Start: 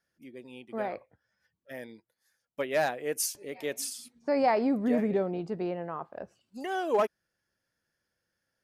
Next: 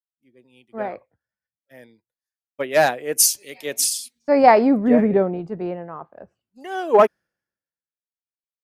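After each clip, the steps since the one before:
multiband upward and downward expander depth 100%
level +6.5 dB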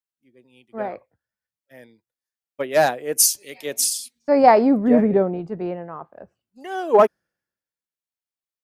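dynamic equaliser 2,300 Hz, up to −4 dB, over −36 dBFS, Q 1.1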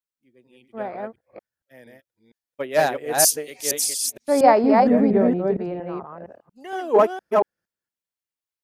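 delay that plays each chunk backwards 232 ms, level −2 dB
level −2.5 dB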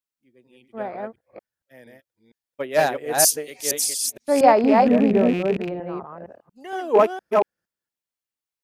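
loose part that buzzes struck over −29 dBFS, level −23 dBFS

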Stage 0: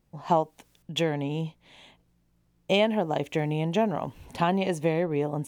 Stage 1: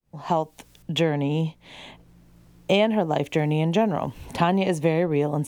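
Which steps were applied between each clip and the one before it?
fade in at the beginning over 0.58 s
low-shelf EQ 160 Hz +3 dB
multiband upward and downward compressor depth 40%
level +3.5 dB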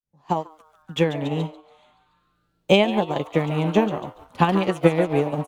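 notch filter 670 Hz, Q 12
on a send: echo with shifted repeats 142 ms, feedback 64%, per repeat +150 Hz, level −9.5 dB
on the sum: expander for the loud parts 2.5 to 1, over −34 dBFS
level +6.5 dB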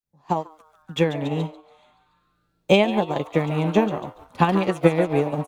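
notch filter 3,000 Hz, Q 16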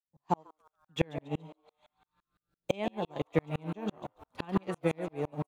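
tremolo with a ramp in dB swelling 5.9 Hz, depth 39 dB
level −2.5 dB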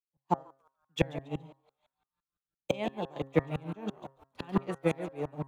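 hum removal 134.9 Hz, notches 14
multiband upward and downward expander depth 40%

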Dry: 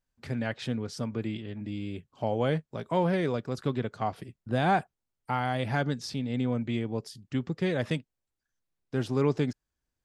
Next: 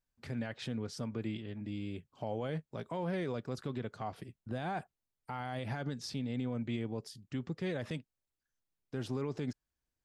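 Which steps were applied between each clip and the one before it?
brickwall limiter −23 dBFS, peak gain reduction 10 dB
level −4.5 dB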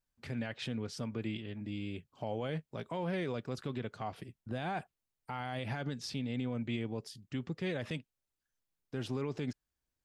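dynamic equaliser 2,700 Hz, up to +5 dB, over −60 dBFS, Q 1.6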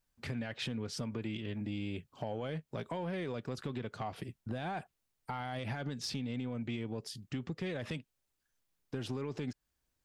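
downward compressor, threshold −39 dBFS, peak gain reduction 7.5 dB
soft clipping −31.5 dBFS, distortion −23 dB
level +5.5 dB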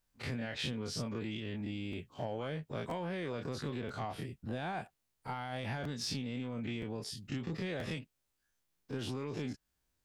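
every bin's largest magnitude spread in time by 60 ms
regular buffer underruns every 0.98 s, samples 512, repeat, from 0:00.93
level −3 dB

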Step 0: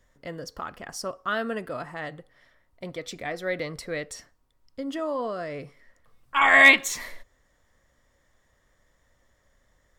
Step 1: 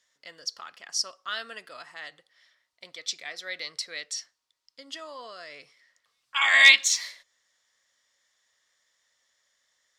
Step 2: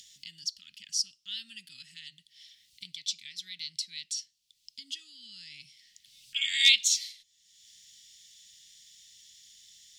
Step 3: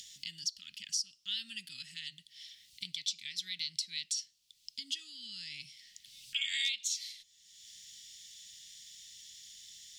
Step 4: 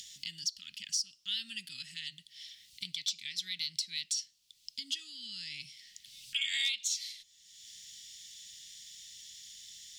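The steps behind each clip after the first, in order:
resonant band-pass 4,700 Hz, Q 1.3; dynamic equaliser 5,000 Hz, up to +5 dB, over −47 dBFS, Q 1.1; level +6.5 dB
in parallel at +2 dB: upward compression, threshold −28 dBFS; on the sum: elliptic band-stop filter 190–2,900 Hz, stop band 70 dB; level −7.5 dB
downward compressor 8 to 1, threshold −34 dBFS, peak gain reduction 18.5 dB; level +3 dB
soft clipping −21.5 dBFS, distortion −24 dB; level +2 dB

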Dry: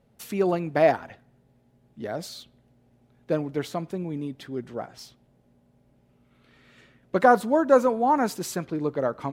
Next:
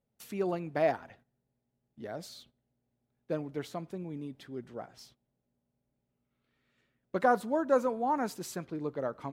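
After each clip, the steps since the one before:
noise gate −51 dBFS, range −11 dB
level −8.5 dB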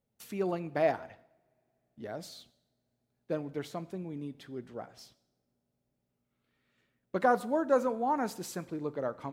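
convolution reverb, pre-delay 3 ms, DRR 16.5 dB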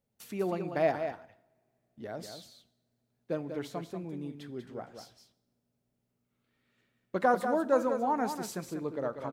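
single-tap delay 192 ms −8 dB

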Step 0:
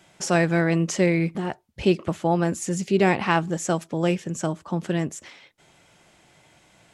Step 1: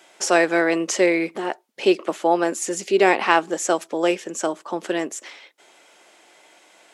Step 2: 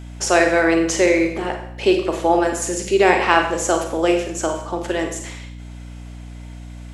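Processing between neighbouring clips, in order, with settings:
high-pass filter 320 Hz 24 dB per octave; level +5 dB
four-comb reverb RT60 0.68 s, combs from 33 ms, DRR 4 dB; mains hum 60 Hz, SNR 15 dB; level +1 dB

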